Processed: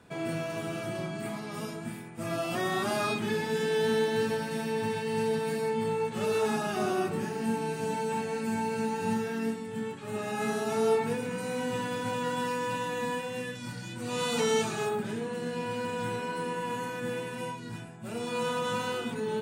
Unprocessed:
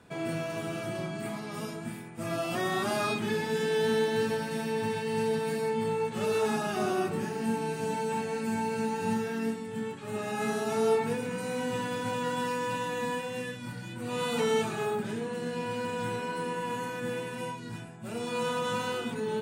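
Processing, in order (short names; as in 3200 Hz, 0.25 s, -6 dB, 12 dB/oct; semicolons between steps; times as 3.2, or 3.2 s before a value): 13.55–14.89 bell 5800 Hz +7.5 dB 1.2 oct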